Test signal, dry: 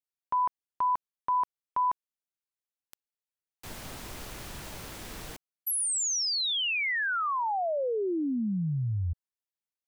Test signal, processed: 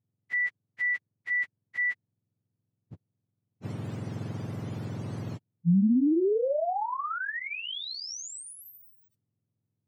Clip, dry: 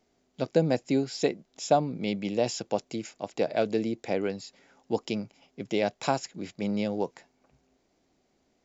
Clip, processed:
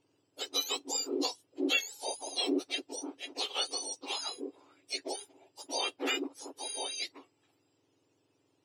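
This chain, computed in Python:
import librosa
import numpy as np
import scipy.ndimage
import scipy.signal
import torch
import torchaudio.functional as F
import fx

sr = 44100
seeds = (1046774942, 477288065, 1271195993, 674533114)

y = fx.octave_mirror(x, sr, pivot_hz=1400.0)
y = fx.air_absorb(y, sr, metres=52.0)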